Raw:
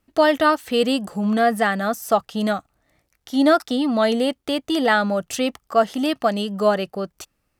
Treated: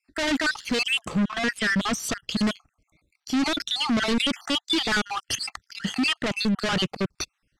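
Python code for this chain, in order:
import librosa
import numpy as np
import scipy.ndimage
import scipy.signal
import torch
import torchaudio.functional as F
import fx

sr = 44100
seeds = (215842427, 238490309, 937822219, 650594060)

y = fx.spec_dropout(x, sr, seeds[0], share_pct=55)
y = fx.leveller(y, sr, passes=2)
y = np.clip(10.0 ** (22.0 / 20.0) * y, -1.0, 1.0) / 10.0 ** (22.0 / 20.0)
y = fx.over_compress(y, sr, threshold_db=-40.0, ratio=-1.0, at=(5.35, 5.84))
y = 10.0 ** (-26.0 / 20.0) * np.tanh(y / 10.0 ** (-26.0 / 20.0))
y = fx.high_shelf(y, sr, hz=4000.0, db=-5.5, at=(1.12, 1.79))
y = scipy.signal.sosfilt(scipy.signal.butter(2, 6400.0, 'lowpass', fs=sr, output='sos'), y)
y = fx.peak_eq(y, sr, hz=700.0, db=-10.5, octaves=1.4)
y = fx.sustainer(y, sr, db_per_s=92.0, at=(3.8, 4.52))
y = F.gain(torch.from_numpy(y), 8.5).numpy()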